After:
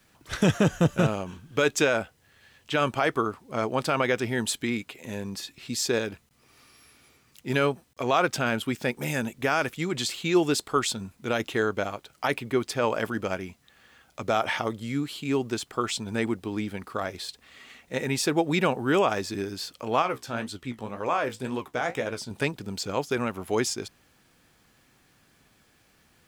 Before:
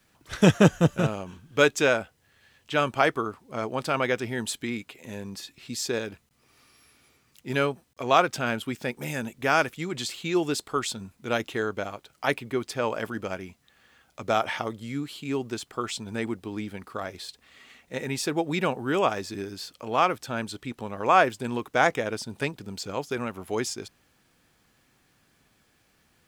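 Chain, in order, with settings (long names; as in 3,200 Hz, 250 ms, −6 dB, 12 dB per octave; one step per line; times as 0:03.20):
brickwall limiter −14.5 dBFS, peak gain reduction 9.5 dB
0:20.02–0:22.31: flanger 1.9 Hz, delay 9.9 ms, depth 9.8 ms, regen +47%
level +3 dB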